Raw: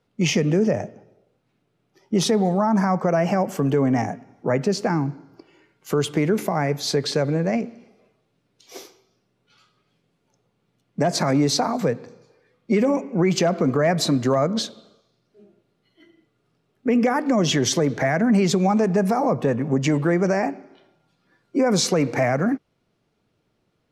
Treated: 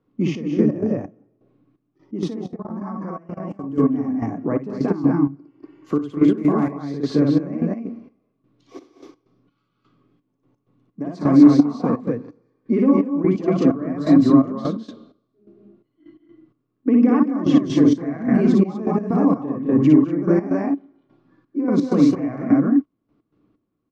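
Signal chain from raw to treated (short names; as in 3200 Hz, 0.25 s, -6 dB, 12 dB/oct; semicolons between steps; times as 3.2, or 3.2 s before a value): low shelf 300 Hz +4 dB; on a send: loudspeakers at several distances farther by 20 m -2 dB, 71 m -4 dB, 83 m -1 dB; on the sum: step gate "xxx..x.xx..." 128 bpm -12 dB; in parallel at -3 dB: compressor 10:1, threshold -23 dBFS, peak gain reduction 16.5 dB; on the sum: small resonant body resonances 290/1100 Hz, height 15 dB, ringing for 45 ms; 2.27–3.78 level quantiser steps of 19 dB; tape spacing loss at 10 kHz 21 dB; gain -9 dB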